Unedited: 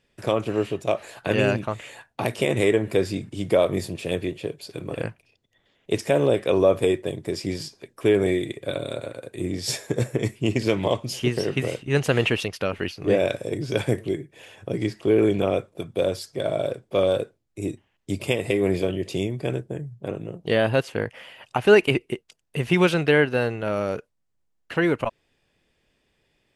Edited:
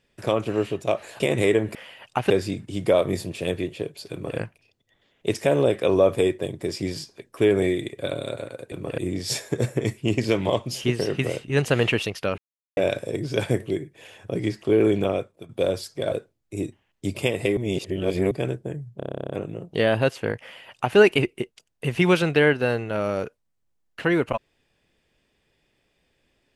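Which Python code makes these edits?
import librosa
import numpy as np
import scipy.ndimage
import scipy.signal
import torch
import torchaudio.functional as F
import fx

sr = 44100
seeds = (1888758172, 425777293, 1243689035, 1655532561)

y = fx.edit(x, sr, fx.cut(start_s=1.2, length_s=1.19),
    fx.duplicate(start_s=4.76, length_s=0.26, to_s=9.36),
    fx.silence(start_s=12.76, length_s=0.39),
    fx.fade_out_to(start_s=15.39, length_s=0.48, floor_db=-12.5),
    fx.cut(start_s=16.5, length_s=0.67),
    fx.reverse_span(start_s=18.62, length_s=0.74),
    fx.stutter(start_s=20.02, slice_s=0.03, count=12),
    fx.duplicate(start_s=21.14, length_s=0.55, to_s=2.94), tone=tone)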